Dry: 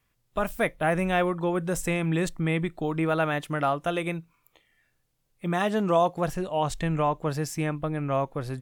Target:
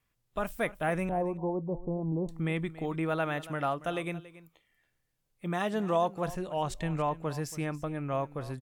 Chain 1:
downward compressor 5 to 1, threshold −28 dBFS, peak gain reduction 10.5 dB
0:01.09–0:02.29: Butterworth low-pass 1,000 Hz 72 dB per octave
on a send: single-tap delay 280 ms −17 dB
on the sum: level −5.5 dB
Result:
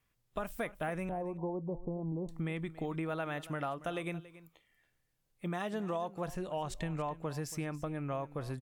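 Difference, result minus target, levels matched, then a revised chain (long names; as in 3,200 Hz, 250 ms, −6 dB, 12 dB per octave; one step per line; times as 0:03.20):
downward compressor: peak gain reduction +10.5 dB
0:01.09–0:02.29: Butterworth low-pass 1,000 Hz 72 dB per octave
on a send: single-tap delay 280 ms −17 dB
on the sum: level −5.5 dB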